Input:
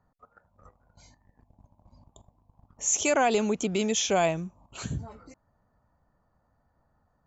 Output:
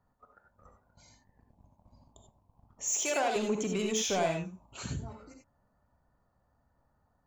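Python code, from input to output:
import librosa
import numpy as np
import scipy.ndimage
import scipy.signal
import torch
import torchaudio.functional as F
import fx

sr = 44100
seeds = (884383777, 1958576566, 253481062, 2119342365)

y = 10.0 ** (-21.0 / 20.0) * np.tanh(x / 10.0 ** (-21.0 / 20.0))
y = fx.highpass(y, sr, hz=370.0, slope=12, at=(2.84, 3.36))
y = fx.rev_gated(y, sr, seeds[0], gate_ms=110, shape='rising', drr_db=3.0)
y = F.gain(torch.from_numpy(y), -4.0).numpy()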